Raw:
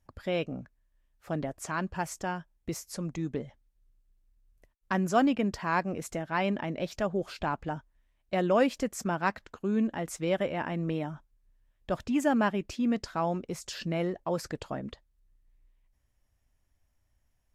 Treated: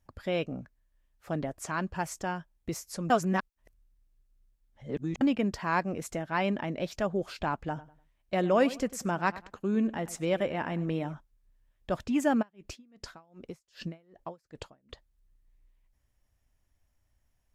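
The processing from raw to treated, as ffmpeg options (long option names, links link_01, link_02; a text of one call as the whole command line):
ffmpeg -i in.wav -filter_complex "[0:a]asettb=1/sr,asplit=3[link_01][link_02][link_03];[link_01]atrim=end=7.684[link_04];[link_02]atrim=start=7.68:end=11.14,asetpts=PTS-STARTPTS,afade=type=in:duration=0.004:curve=qsin,afade=type=out:start_time=3.456:duration=0.004:curve=qsin,asplit=2[link_05][link_06];[link_06]adelay=99,lowpass=frequency=3300:poles=1,volume=-17dB,asplit=2[link_07][link_08];[link_08]adelay=99,lowpass=frequency=3300:poles=1,volume=0.3,asplit=2[link_09][link_10];[link_10]adelay=99,lowpass=frequency=3300:poles=1,volume=0.3[link_11];[link_05][link_07][link_09][link_11]amix=inputs=4:normalize=0,atrim=end_sample=152586[link_12];[link_03]atrim=start=11.136[link_13];[link_04][link_12]acrossfade=duration=0.004:curve1=hsin:curve2=qsin[link_14];[link_14][link_13]acrossfade=duration=0.004:curve1=qsin:curve2=hsin,asplit=3[link_15][link_16][link_17];[link_15]afade=type=out:start_time=12.41:duration=0.02[link_18];[link_16]aeval=exprs='val(0)*pow(10,-37*(0.5-0.5*cos(2*PI*2.6*n/s))/20)':channel_layout=same,afade=type=in:start_time=12.41:duration=0.02,afade=type=out:start_time=14.89:duration=0.02[link_19];[link_17]afade=type=in:start_time=14.89:duration=0.02[link_20];[link_18][link_19][link_20]amix=inputs=3:normalize=0,asplit=3[link_21][link_22][link_23];[link_21]atrim=end=3.102[link_24];[link_22]atrim=start=3.098:end=5.212,asetpts=PTS-STARTPTS,areverse[link_25];[link_23]atrim=start=5.208[link_26];[link_24][link_25]acrossfade=duration=0.004:curve1=hsin:curve2=hsin[link_27];[link_27][link_26]acrossfade=duration=0.004:curve1=hsin:curve2=hsin" out.wav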